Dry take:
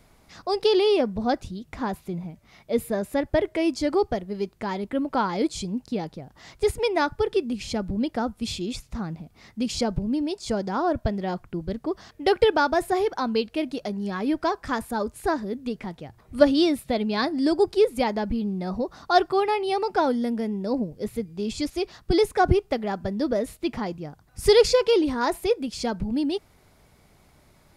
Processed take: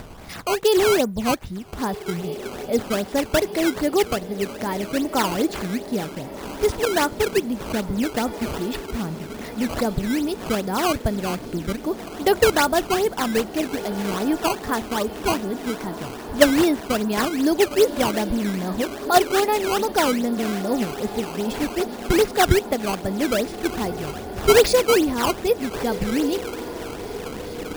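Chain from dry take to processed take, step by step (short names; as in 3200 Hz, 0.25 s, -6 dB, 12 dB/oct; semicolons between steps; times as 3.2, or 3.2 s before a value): upward compressor, threshold -29 dBFS; diffused feedback echo 1.536 s, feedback 65%, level -13 dB; decimation with a swept rate 14×, swing 160% 2.5 Hz; gain +2.5 dB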